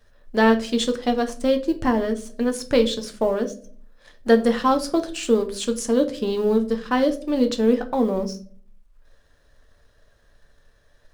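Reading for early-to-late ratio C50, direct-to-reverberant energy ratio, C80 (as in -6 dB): 15.0 dB, 6.0 dB, 20.0 dB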